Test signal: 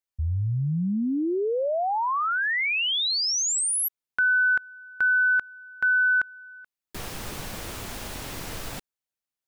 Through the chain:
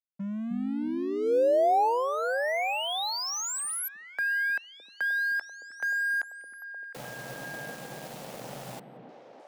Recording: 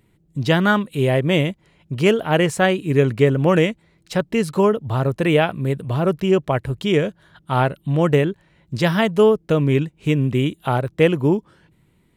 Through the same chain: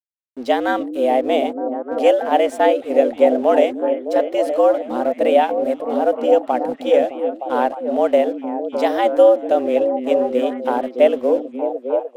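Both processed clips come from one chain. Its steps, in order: band shelf 510 Hz +9.5 dB 1.3 oct; frequency shift +120 Hz; crossover distortion -39 dBFS; on a send: delay with a stepping band-pass 0.306 s, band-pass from 230 Hz, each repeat 0.7 oct, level -1.5 dB; on the sum: gain -6 dB

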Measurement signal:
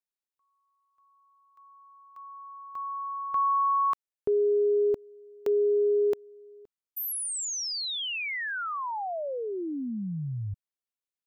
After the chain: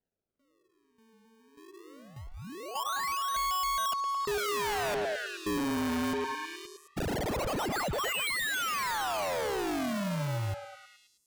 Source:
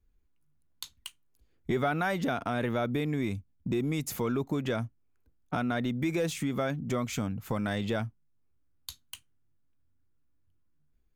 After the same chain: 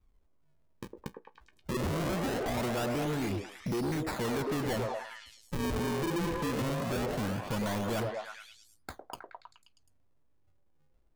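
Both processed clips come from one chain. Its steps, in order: decimation with a swept rate 37×, swing 160% 0.21 Hz; delay with a stepping band-pass 0.106 s, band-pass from 480 Hz, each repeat 0.7 oct, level -0.5 dB; hard clip -31.5 dBFS; gain +2 dB

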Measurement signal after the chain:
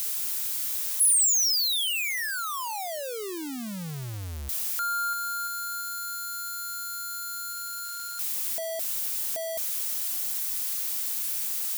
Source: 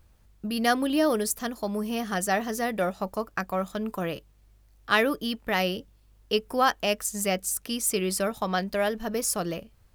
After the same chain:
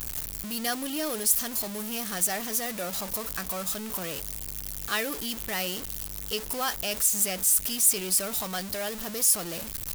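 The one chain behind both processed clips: zero-crossing step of -24.5 dBFS; pre-emphasis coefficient 0.8; gain +2 dB

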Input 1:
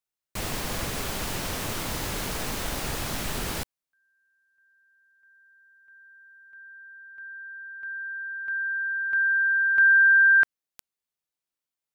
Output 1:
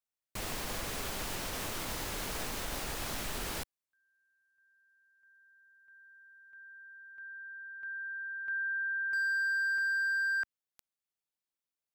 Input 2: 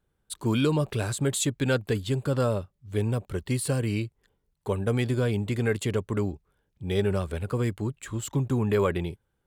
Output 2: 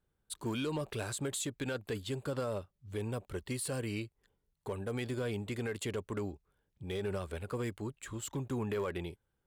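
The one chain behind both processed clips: dynamic EQ 130 Hz, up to -7 dB, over -40 dBFS, Q 0.7; limiter -21.5 dBFS; hard clip -23.5 dBFS; gain -5.5 dB

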